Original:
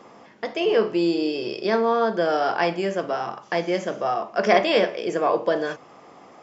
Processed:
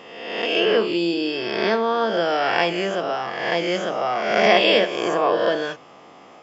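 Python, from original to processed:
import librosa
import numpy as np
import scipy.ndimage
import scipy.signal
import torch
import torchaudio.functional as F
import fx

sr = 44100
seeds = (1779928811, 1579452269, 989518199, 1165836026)

y = fx.spec_swells(x, sr, rise_s=1.14)
y = fx.peak_eq(y, sr, hz=3000.0, db=7.5, octaves=0.64)
y = y * 10.0 ** (-1.5 / 20.0)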